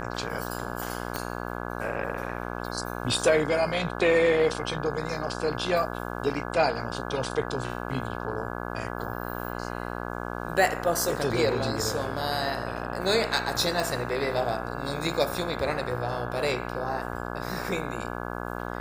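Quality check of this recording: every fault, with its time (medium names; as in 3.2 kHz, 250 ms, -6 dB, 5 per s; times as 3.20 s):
buzz 60 Hz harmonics 28 -34 dBFS
1.16 s: pop -13 dBFS
13.80 s: dropout 2 ms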